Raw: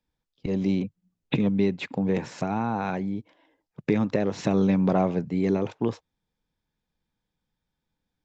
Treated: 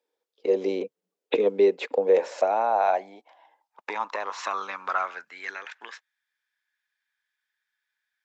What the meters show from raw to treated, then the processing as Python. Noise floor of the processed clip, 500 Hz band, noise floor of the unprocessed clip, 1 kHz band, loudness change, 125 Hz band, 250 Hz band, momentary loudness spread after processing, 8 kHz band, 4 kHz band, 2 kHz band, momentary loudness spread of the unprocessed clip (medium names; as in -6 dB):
under -85 dBFS, +4.5 dB, -84 dBFS, +6.0 dB, 0.0 dB, under -25 dB, -12.5 dB, 17 LU, no reading, +0.5 dB, +3.5 dB, 10 LU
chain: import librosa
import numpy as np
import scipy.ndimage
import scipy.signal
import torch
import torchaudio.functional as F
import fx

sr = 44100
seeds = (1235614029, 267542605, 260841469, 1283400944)

y = scipy.signal.sosfilt(scipy.signal.butter(2, 260.0, 'highpass', fs=sr, output='sos'), x)
y = fx.filter_sweep_highpass(y, sr, from_hz=450.0, to_hz=1700.0, start_s=1.75, end_s=5.71, q=5.6)